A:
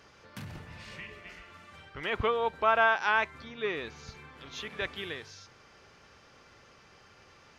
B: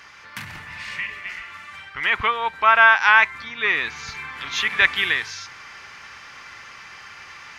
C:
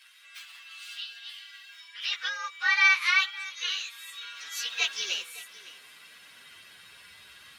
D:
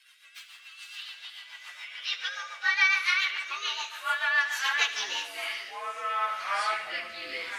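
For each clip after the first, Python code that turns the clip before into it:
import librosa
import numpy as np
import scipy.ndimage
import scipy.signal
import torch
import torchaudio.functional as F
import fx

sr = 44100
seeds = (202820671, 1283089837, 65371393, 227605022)

y1 = fx.graphic_eq(x, sr, hz=(500, 1000, 2000), db=(-5, 8, 11))
y1 = fx.rider(y1, sr, range_db=10, speed_s=2.0)
y1 = fx.high_shelf(y1, sr, hz=2300.0, db=10.5)
y2 = fx.partial_stretch(y1, sr, pct=121)
y2 = y2 + 10.0 ** (-18.5 / 20.0) * np.pad(y2, (int(560 * sr / 1000.0), 0))[:len(y2)]
y2 = fx.filter_sweep_highpass(y2, sr, from_hz=1400.0, to_hz=69.0, start_s=3.91, end_s=7.2, q=0.79)
y2 = y2 * librosa.db_to_amplitude(-5.5)
y3 = fx.echo_pitch(y2, sr, ms=514, semitones=-5, count=3, db_per_echo=-3.0)
y3 = fx.echo_feedback(y3, sr, ms=72, feedback_pct=59, wet_db=-9)
y3 = fx.rotary_switch(y3, sr, hz=7.0, then_hz=0.85, switch_at_s=4.74)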